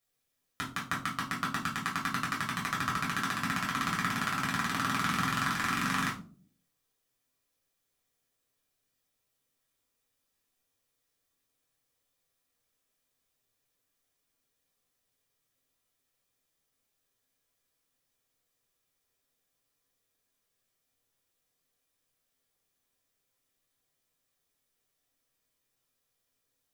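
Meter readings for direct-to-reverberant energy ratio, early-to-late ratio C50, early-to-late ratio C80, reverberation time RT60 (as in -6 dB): -5.0 dB, 8.0 dB, 13.0 dB, 0.45 s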